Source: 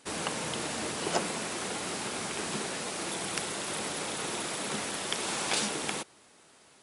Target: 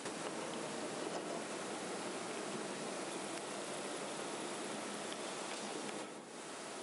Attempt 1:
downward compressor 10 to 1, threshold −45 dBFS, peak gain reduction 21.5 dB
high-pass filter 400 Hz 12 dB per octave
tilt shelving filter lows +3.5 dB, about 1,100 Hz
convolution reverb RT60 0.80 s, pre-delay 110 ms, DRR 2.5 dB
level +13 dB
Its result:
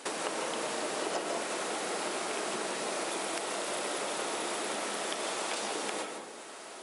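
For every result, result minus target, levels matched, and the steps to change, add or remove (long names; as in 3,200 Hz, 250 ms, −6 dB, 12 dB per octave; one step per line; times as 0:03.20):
downward compressor: peak gain reduction −10 dB; 250 Hz band −5.0 dB
change: downward compressor 10 to 1, threshold −56 dBFS, peak gain reduction 31.5 dB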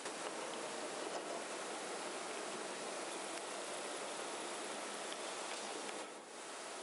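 250 Hz band −4.5 dB
change: high-pass filter 200 Hz 12 dB per octave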